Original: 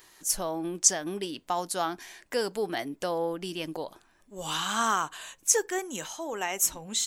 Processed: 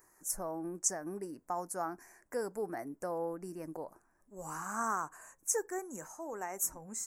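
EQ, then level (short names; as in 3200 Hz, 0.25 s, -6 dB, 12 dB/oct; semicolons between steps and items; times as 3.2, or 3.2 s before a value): Butterworth band-stop 3400 Hz, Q 0.66; -7.0 dB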